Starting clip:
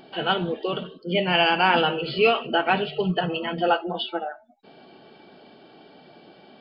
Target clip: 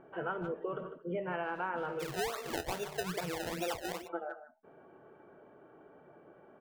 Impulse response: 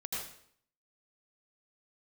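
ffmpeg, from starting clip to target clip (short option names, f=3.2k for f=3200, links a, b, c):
-filter_complex "[0:a]lowpass=f=1.5k:w=0.5412,lowpass=f=1.5k:w=1.3066,equalizer=f=760:t=o:w=0.37:g=-9,asplit=2[a][b];[b]adelay=150,highpass=300,lowpass=3.4k,asoftclip=type=hard:threshold=-19dB,volume=-13dB[c];[a][c]amix=inputs=2:normalize=0,asplit=3[d][e][f];[d]afade=t=out:st=1.99:d=0.02[g];[e]acrusher=samples=27:mix=1:aa=0.000001:lfo=1:lforange=27:lforate=2.4,afade=t=in:st=1.99:d=0.02,afade=t=out:st=4.07:d=0.02[h];[f]afade=t=in:st=4.07:d=0.02[i];[g][h][i]amix=inputs=3:normalize=0,equalizer=f=220:t=o:w=0.98:g=-10.5,acompressor=threshold=-30dB:ratio=6,volume=-3dB"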